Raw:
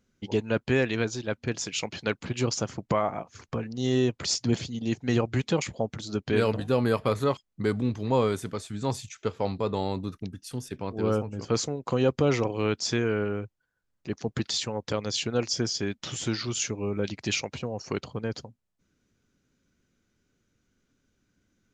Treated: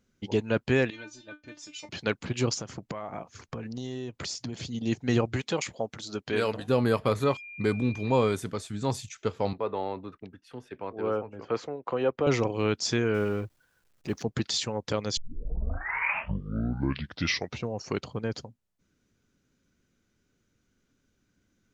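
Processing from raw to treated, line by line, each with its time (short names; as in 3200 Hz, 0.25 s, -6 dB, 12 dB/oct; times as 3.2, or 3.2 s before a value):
0.9–1.89 resonator 300 Hz, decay 0.16 s, mix 100%
2.54–4.68 compressor 10:1, threshold -31 dBFS
5.36–6.68 low shelf 280 Hz -10.5 dB
7.21–8.34 whine 2400 Hz -41 dBFS
9.53–12.27 three-band isolator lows -13 dB, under 340 Hz, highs -24 dB, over 2900 Hz
13.14–14.23 G.711 law mismatch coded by mu
15.17 tape start 2.57 s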